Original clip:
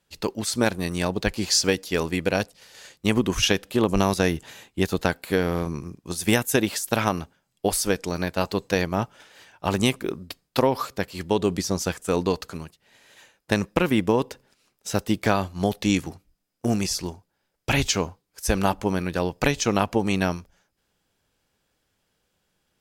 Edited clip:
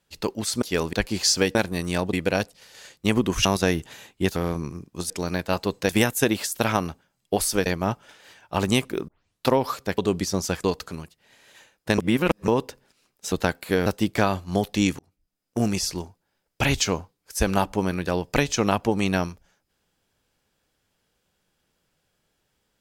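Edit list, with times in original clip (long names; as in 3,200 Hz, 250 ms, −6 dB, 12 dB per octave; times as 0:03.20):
0:00.62–0:01.20: swap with 0:01.82–0:02.13
0:03.45–0:04.02: remove
0:04.93–0:05.47: move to 0:14.94
0:07.98–0:08.77: move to 0:06.21
0:10.19: tape start 0.38 s
0:11.09–0:11.35: remove
0:12.01–0:12.26: remove
0:13.60–0:14.10: reverse
0:16.07–0:16.68: fade in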